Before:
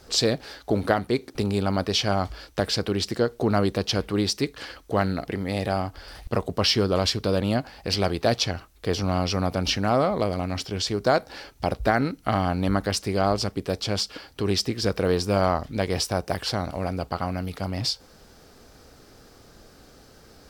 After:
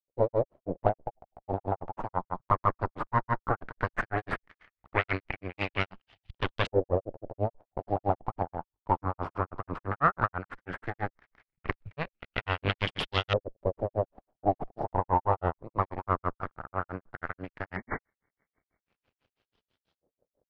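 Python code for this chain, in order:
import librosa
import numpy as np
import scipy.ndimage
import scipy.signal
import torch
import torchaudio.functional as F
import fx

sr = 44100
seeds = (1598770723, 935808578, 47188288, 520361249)

p1 = np.clip(x, -10.0 ** (-23.0 / 20.0), 10.0 ** (-23.0 / 20.0))
p2 = x + (p1 * librosa.db_to_amplitude(-3.5))
p3 = fx.cheby_harmonics(p2, sr, harmonics=(3, 4, 5), levels_db=(-8, -7, -29), full_scale_db=-4.5)
p4 = fx.spec_erase(p3, sr, start_s=17.78, length_s=1.14, low_hz=2300.0, high_hz=12000.0)
p5 = fx.granulator(p4, sr, seeds[0], grain_ms=123.0, per_s=6.1, spray_ms=100.0, spread_st=0)
p6 = fx.filter_lfo_lowpass(p5, sr, shape='saw_up', hz=0.15, low_hz=510.0, high_hz=3500.0, q=3.9)
y = p6 * librosa.db_to_amplitude(-3.0)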